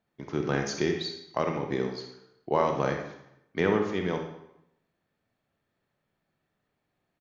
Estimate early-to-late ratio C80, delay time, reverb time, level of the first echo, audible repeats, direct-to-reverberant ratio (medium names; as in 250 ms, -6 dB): 9.0 dB, 67 ms, 0.80 s, -11.0 dB, 1, 3.5 dB